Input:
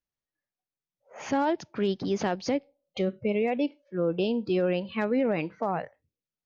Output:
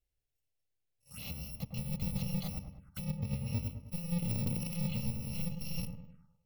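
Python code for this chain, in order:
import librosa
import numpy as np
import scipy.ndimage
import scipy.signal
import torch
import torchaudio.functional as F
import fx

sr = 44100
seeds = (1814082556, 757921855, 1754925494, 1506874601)

y = fx.bit_reversed(x, sr, seeds[0], block=128)
y = fx.over_compress(y, sr, threshold_db=-31.0, ratio=-0.5)
y = fx.high_shelf(y, sr, hz=5200.0, db=-7.0, at=(3.04, 3.63))
y = np.clip(y, -10.0 ** (-31.5 / 20.0), 10.0 ** (-31.5 / 20.0))
y = fx.bass_treble(y, sr, bass_db=9, treble_db=-8)
y = fx.echo_wet_lowpass(y, sr, ms=103, feedback_pct=49, hz=1300.0, wet_db=-5.5)
y = fx.env_phaser(y, sr, low_hz=190.0, high_hz=1500.0, full_db=-41.0)
y = fx.transient(y, sr, attack_db=-2, sustain_db=11, at=(4.22, 4.8))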